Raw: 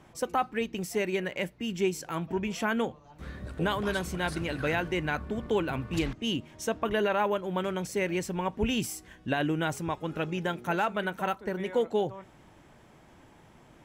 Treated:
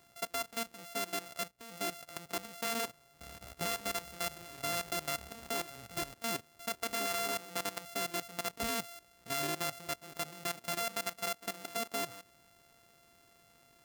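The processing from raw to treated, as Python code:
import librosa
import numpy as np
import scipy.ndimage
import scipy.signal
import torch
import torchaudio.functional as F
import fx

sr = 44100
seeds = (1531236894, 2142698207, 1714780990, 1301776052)

y = np.r_[np.sort(x[:len(x) // 64 * 64].reshape(-1, 64), axis=1).ravel(), x[len(x) // 64 * 64:]]
y = fx.tilt_eq(y, sr, slope=2.0)
y = fx.level_steps(y, sr, step_db=15)
y = y * 10.0 ** (-4.5 / 20.0)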